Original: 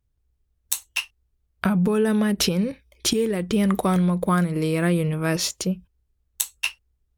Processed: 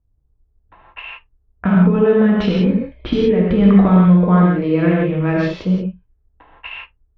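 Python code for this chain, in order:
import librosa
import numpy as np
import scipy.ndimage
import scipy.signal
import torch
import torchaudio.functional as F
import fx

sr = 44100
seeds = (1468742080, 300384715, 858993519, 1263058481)

y = scipy.signal.sosfilt(scipy.signal.butter(4, 3100.0, 'lowpass', fs=sr, output='sos'), x)
y = fx.tilt_eq(y, sr, slope=-1.5)
y = fx.rev_gated(y, sr, seeds[0], gate_ms=200, shape='flat', drr_db=-3.5)
y = fx.env_lowpass(y, sr, base_hz=1500.0, full_db=-18.5)
y = fx.low_shelf(y, sr, hz=110.0, db=9.5, at=(2.66, 3.9))
y = fx.env_lowpass(y, sr, base_hz=1200.0, full_db=-18.0)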